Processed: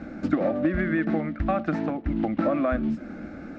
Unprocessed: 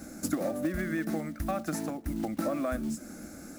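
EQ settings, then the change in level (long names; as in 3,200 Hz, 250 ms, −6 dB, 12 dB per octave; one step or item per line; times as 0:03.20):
low-pass filter 3,100 Hz 24 dB per octave
+7.0 dB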